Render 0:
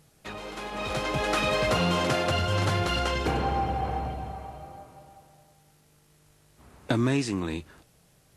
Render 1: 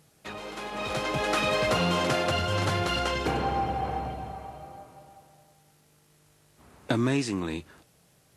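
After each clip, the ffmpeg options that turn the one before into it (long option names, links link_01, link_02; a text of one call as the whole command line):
ffmpeg -i in.wav -af "highpass=frequency=97:poles=1" out.wav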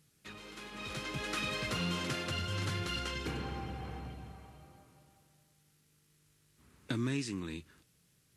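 ffmpeg -i in.wav -af "equalizer=frequency=700:width_type=o:width=1.2:gain=-13.5,volume=-6.5dB" out.wav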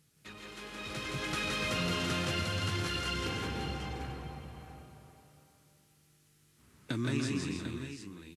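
ffmpeg -i in.wav -af "aecho=1:1:143|169|293|328|694|746:0.335|0.708|0.355|0.335|0.2|0.355" out.wav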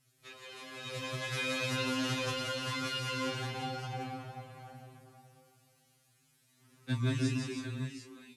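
ffmpeg -i in.wav -af "flanger=delay=16.5:depth=2.7:speed=2.3,afftfilt=real='re*2.45*eq(mod(b,6),0)':imag='im*2.45*eq(mod(b,6),0)':win_size=2048:overlap=0.75,volume=4.5dB" out.wav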